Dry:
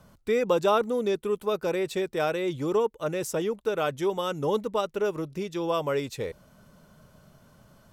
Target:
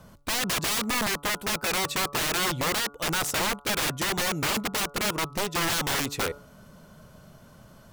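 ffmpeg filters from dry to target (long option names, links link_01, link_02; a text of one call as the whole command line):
ffmpeg -i in.wav -af "aeval=exprs='(mod(21.1*val(0)+1,2)-1)/21.1':channel_layout=same,bandreject=frequency=143.1:width_type=h:width=4,bandreject=frequency=286.2:width_type=h:width=4,bandreject=frequency=429.3:width_type=h:width=4,bandreject=frequency=572.4:width_type=h:width=4,bandreject=frequency=715.5:width_type=h:width=4,bandreject=frequency=858.6:width_type=h:width=4,bandreject=frequency=1001.7:width_type=h:width=4,bandreject=frequency=1144.8:width_type=h:width=4,bandreject=frequency=1287.9:width_type=h:width=4,bandreject=frequency=1431:width_type=h:width=4,volume=5dB" out.wav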